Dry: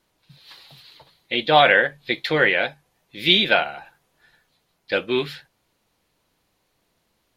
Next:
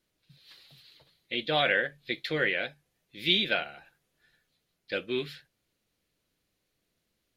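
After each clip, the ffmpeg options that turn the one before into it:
-af "equalizer=f=910:t=o:w=0.82:g=-10.5,volume=0.398"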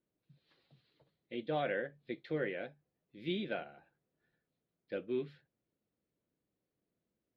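-af "bandpass=f=270:t=q:w=0.55:csg=0,volume=0.668"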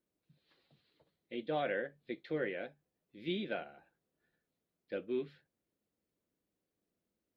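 -af "equalizer=f=130:t=o:w=0.37:g=-8"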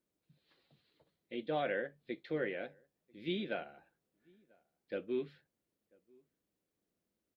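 -filter_complex "[0:a]asplit=2[s0][s1];[s1]adelay=991.3,volume=0.0355,highshelf=f=4000:g=-22.3[s2];[s0][s2]amix=inputs=2:normalize=0"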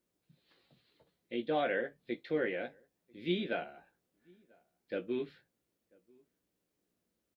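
-filter_complex "[0:a]asplit=2[s0][s1];[s1]adelay=17,volume=0.447[s2];[s0][s2]amix=inputs=2:normalize=0,volume=1.33"

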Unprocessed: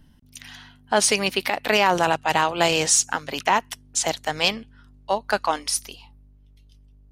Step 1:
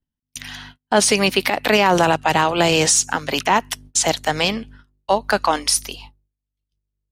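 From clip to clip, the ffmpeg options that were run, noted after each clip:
-filter_complex "[0:a]agate=range=0.0112:threshold=0.00447:ratio=16:detection=peak,acrossover=split=390[s0][s1];[s1]alimiter=limit=0.2:level=0:latency=1:release=91[s2];[s0][s2]amix=inputs=2:normalize=0,volume=2.51"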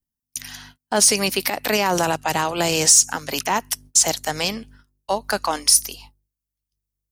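-af "aexciter=amount=3.4:drive=4.4:freq=4800,volume=0.562"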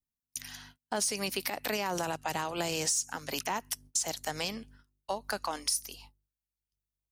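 -af "acompressor=threshold=0.0891:ratio=3,volume=0.376"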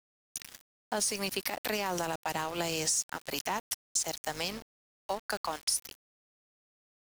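-af "aeval=exprs='val(0)*gte(abs(val(0)),0.0106)':c=same"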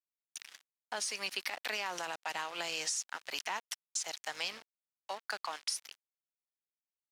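-af "bandpass=f=2400:t=q:w=0.64:csg=0"

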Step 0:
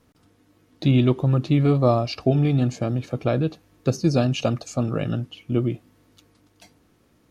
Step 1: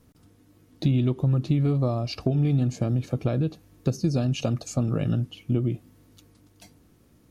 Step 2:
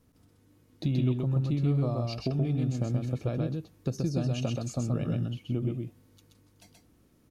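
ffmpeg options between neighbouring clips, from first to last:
-af "highshelf=f=6200:g=9.5,acompressor=threshold=0.0708:ratio=4,lowshelf=f=340:g=9.5,volume=0.631"
-af "aecho=1:1:128:0.708,volume=0.473"

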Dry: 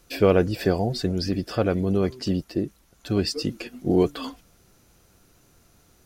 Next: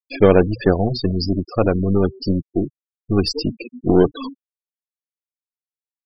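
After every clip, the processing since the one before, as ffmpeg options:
-af "aeval=exprs='0.531*(cos(1*acos(clip(val(0)/0.531,-1,1)))-cos(1*PI/2))+0.0422*(cos(6*acos(clip(val(0)/0.531,-1,1)))-cos(6*PI/2))+0.0668*(cos(8*acos(clip(val(0)/0.531,-1,1)))-cos(8*PI/2))':c=same,bandreject=f=60:t=h:w=6,bandreject=f=120:t=h:w=6,afftfilt=real='re*gte(hypot(re,im),0.0562)':imag='im*gte(hypot(re,im),0.0562)':win_size=1024:overlap=0.75,volume=1.88"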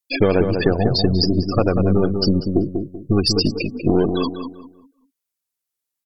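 -filter_complex "[0:a]aemphasis=mode=production:type=cd,acompressor=threshold=0.1:ratio=5,asplit=2[s0][s1];[s1]adelay=192,lowpass=f=1500:p=1,volume=0.531,asplit=2[s2][s3];[s3]adelay=192,lowpass=f=1500:p=1,volume=0.32,asplit=2[s4][s5];[s5]adelay=192,lowpass=f=1500:p=1,volume=0.32,asplit=2[s6][s7];[s7]adelay=192,lowpass=f=1500:p=1,volume=0.32[s8];[s2][s4][s6][s8]amix=inputs=4:normalize=0[s9];[s0][s9]amix=inputs=2:normalize=0,volume=2"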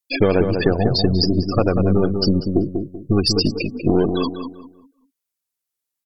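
-af anull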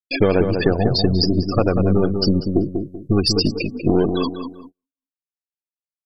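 -af "aresample=32000,aresample=44100,agate=range=0.0126:threshold=0.0112:ratio=16:detection=peak"

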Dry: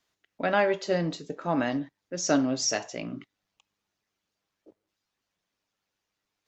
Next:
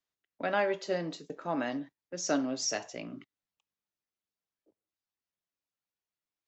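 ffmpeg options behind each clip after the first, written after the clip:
-filter_complex "[0:a]agate=range=0.316:threshold=0.00794:ratio=16:detection=peak,acrossover=split=190[s0][s1];[s0]acompressor=threshold=0.00398:ratio=6[s2];[s2][s1]amix=inputs=2:normalize=0,volume=0.562"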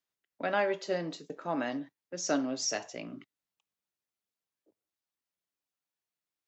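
-af "lowshelf=f=64:g=-7.5"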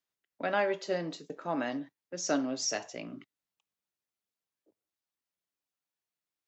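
-af anull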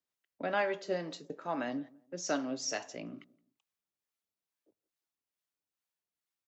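-filter_complex "[0:a]acrossover=split=630[s0][s1];[s0]aeval=exprs='val(0)*(1-0.5/2+0.5/2*cos(2*PI*2.3*n/s))':c=same[s2];[s1]aeval=exprs='val(0)*(1-0.5/2-0.5/2*cos(2*PI*2.3*n/s))':c=same[s3];[s2][s3]amix=inputs=2:normalize=0,asplit=2[s4][s5];[s5]adelay=170,lowpass=f=1000:p=1,volume=0.0794,asplit=2[s6][s7];[s7]adelay=170,lowpass=f=1000:p=1,volume=0.32[s8];[s4][s6][s8]amix=inputs=3:normalize=0"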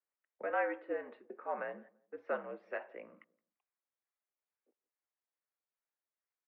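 -af "highpass=f=450:t=q:w=0.5412,highpass=f=450:t=q:w=1.307,lowpass=f=2300:t=q:w=0.5176,lowpass=f=2300:t=q:w=0.7071,lowpass=f=2300:t=q:w=1.932,afreqshift=-67,volume=0.841"

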